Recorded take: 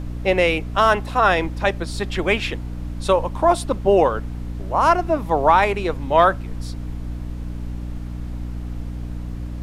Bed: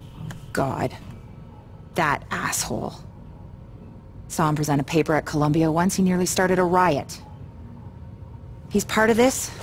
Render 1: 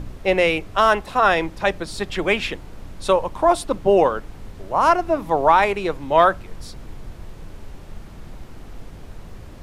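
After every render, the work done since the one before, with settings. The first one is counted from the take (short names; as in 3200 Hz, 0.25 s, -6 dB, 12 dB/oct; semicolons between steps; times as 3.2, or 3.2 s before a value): de-hum 60 Hz, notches 5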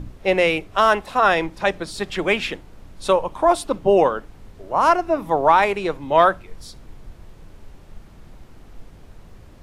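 noise print and reduce 6 dB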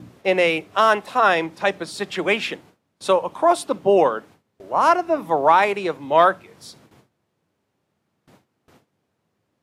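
Bessel high-pass 160 Hz, order 8; gate with hold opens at -40 dBFS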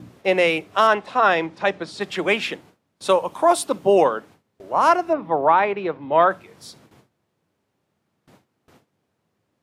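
0.87–2.01 air absorption 76 m; 3.09–4.04 high shelf 6000 Hz +8 dB; 5.13–6.31 air absorption 330 m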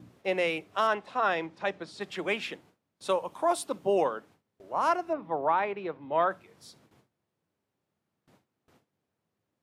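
gain -10 dB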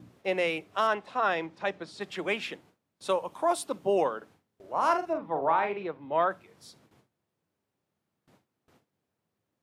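4.17–5.83 doubler 44 ms -7 dB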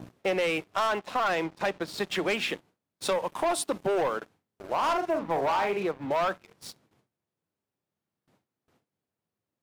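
sample leveller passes 3; compressor 2.5:1, threshold -28 dBFS, peak gain reduction 8 dB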